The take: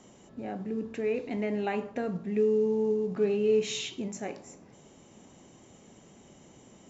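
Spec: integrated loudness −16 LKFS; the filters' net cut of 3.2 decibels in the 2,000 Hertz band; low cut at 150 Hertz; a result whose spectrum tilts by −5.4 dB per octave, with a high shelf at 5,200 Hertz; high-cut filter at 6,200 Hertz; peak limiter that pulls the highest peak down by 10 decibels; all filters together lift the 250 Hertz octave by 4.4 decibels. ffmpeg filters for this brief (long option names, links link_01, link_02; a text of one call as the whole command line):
ffmpeg -i in.wav -af "highpass=150,lowpass=6200,equalizer=frequency=250:width_type=o:gain=6.5,equalizer=frequency=2000:width_type=o:gain=-5.5,highshelf=frequency=5200:gain=7.5,volume=16.5dB,alimiter=limit=-7.5dB:level=0:latency=1" out.wav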